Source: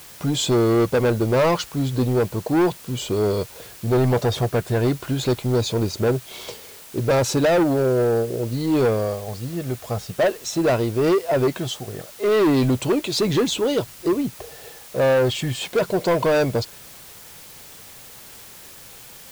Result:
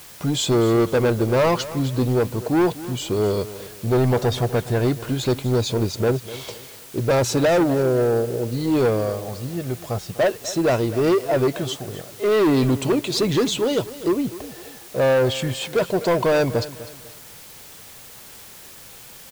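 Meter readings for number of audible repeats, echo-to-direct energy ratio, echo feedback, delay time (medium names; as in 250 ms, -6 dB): 3, -15.5 dB, 35%, 249 ms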